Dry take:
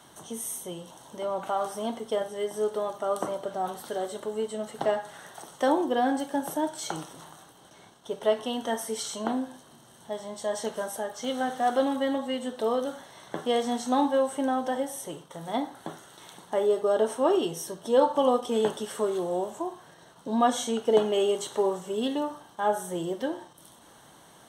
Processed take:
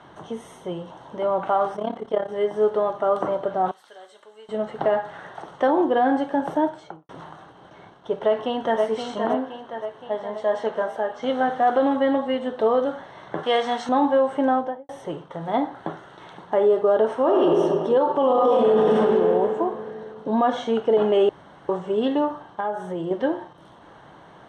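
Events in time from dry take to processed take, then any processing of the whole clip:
1.76–2.29 s: AM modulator 34 Hz, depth 70%
3.71–4.49 s: differentiator
6.58–7.09 s: studio fade out
8.13–8.81 s: echo throw 520 ms, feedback 60%, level -6.5 dB
9.34–11.23 s: tone controls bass -7 dB, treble -4 dB
13.43–13.89 s: tilt shelf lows -8 dB, about 750 Hz
14.49–14.89 s: studio fade out
17.13–17.62 s: reverb throw, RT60 2 s, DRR 0 dB
18.26–18.94 s: reverb throw, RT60 2.3 s, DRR -9.5 dB
20.29–20.75 s: low-pass 6.5 kHz
21.29–21.69 s: room tone
22.60–23.11 s: compression 2.5:1, threshold -34 dBFS
whole clip: low-pass 2.1 kHz 12 dB/octave; peaking EQ 240 Hz -5.5 dB 0.22 oct; peak limiter -19 dBFS; trim +8 dB

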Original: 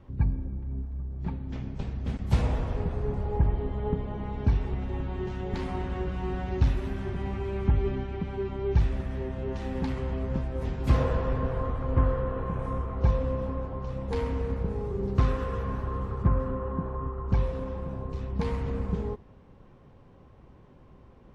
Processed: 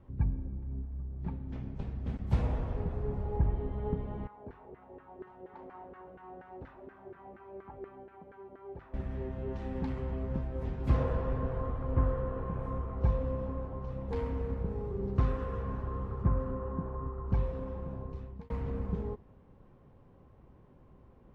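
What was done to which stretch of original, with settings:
4.27–8.94 s: LFO band-pass saw down 4.2 Hz 430–1600 Hz
17.84–18.50 s: fade out equal-power
whole clip: treble shelf 2.8 kHz -11 dB; trim -4.5 dB

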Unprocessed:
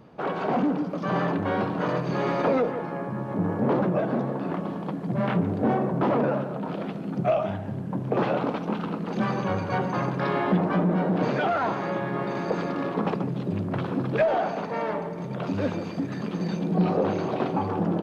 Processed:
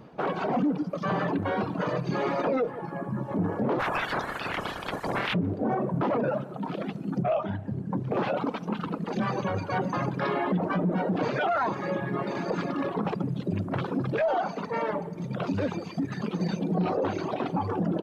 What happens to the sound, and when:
3.79–5.33 s: spectral peaks clipped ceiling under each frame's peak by 28 dB
7.22–8.10 s: low-pass 3.1 kHz -> 4.5 kHz 6 dB/octave
whole clip: reverb removal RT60 1.6 s; peak limiter -21.5 dBFS; trim +2.5 dB

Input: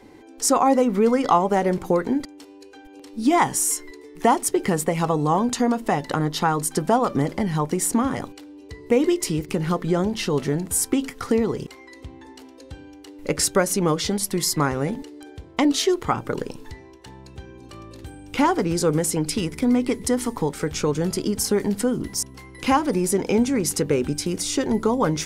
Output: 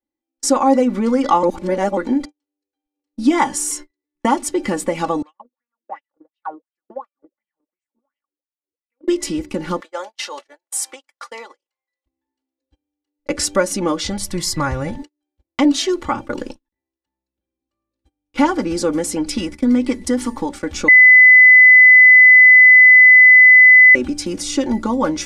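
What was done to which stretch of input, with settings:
1.43–1.97 s: reverse
5.22–9.08 s: wah-wah 2.8 Hz 350–2800 Hz, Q 8.8
9.80–12.06 s: high-pass 580 Hz 24 dB/octave
14.08–14.99 s: resonant low shelf 180 Hz +9 dB, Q 3
16.68–17.59 s: transformer saturation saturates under 290 Hz
20.88–23.95 s: bleep 2.01 kHz -9 dBFS
whole clip: gate -31 dBFS, range -44 dB; low-pass 8.8 kHz 12 dB/octave; comb 3.5 ms, depth 86%

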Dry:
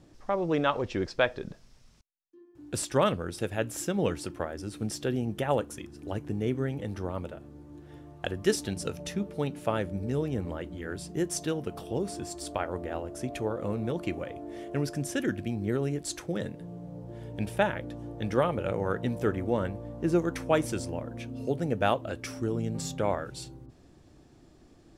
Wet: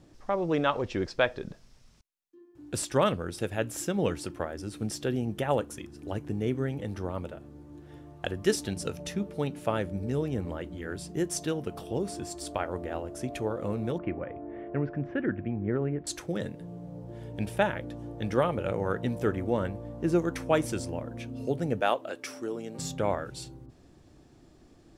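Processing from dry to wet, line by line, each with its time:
13.98–16.07 s: low-pass 2.1 kHz 24 dB/octave
21.80–22.79 s: high-pass 340 Hz

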